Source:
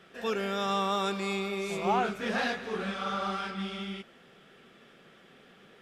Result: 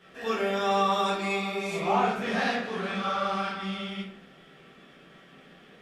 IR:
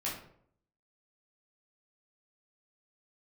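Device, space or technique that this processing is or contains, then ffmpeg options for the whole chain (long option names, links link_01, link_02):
bathroom: -filter_complex "[1:a]atrim=start_sample=2205[link_01];[0:a][link_01]afir=irnorm=-1:irlink=0,asettb=1/sr,asplit=3[link_02][link_03][link_04];[link_02]atrim=end=2.424[link_05];[link_03]atrim=start=2.42:end=2.89,asetpts=PTS-STARTPTS,afade=type=in:duration=0.004:curve=qsin,afade=type=out:start_time=0.466:duration=0.004:curve=qsin,highpass=110[link_06];[link_04]atrim=start=2.886[link_07];[link_05][link_06]acrossfade=duration=0.004:curve1=hsin:curve2=qsin[link_08];[link_08][link_07]acrossfade=duration=0.004:curve1=qsin:curve2=hsin"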